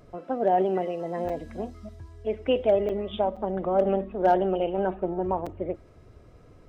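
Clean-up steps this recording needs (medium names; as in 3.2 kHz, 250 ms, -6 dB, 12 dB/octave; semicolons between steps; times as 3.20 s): interpolate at 1.29/2.89/3.36/5.46 s, 5.5 ms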